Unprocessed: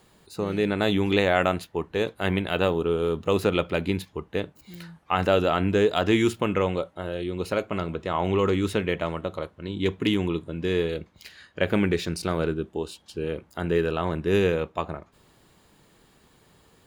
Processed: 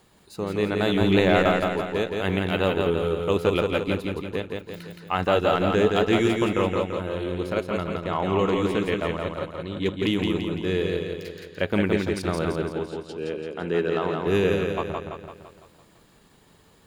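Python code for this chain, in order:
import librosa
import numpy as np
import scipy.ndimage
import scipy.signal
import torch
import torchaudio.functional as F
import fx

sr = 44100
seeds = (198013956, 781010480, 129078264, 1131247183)

y = fx.transient(x, sr, attack_db=-2, sustain_db=-8)
y = fx.low_shelf(y, sr, hz=240.0, db=8.0, at=(1.01, 1.53))
y = fx.bandpass_edges(y, sr, low_hz=170.0, high_hz=7500.0, at=(12.53, 14.27))
y = fx.echo_feedback(y, sr, ms=169, feedback_pct=53, wet_db=-3.5)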